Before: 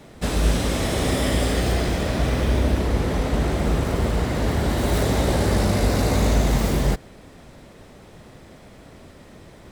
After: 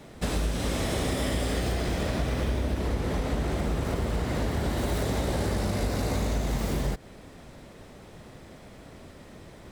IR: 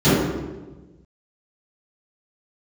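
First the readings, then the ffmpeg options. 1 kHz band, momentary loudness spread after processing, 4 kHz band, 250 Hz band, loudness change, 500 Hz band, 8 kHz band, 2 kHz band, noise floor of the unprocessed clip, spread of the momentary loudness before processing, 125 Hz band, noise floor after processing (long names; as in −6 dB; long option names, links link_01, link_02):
−7.0 dB, 20 LU, −6.5 dB, −7.0 dB, −7.0 dB, −7.0 dB, −7.0 dB, −6.5 dB, −46 dBFS, 3 LU, −7.0 dB, −48 dBFS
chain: -af "acompressor=threshold=-22dB:ratio=6,volume=-2dB"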